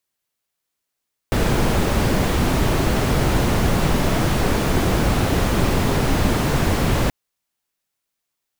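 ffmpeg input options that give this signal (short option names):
-f lavfi -i "anoisesrc=c=brown:a=0.624:d=5.78:r=44100:seed=1"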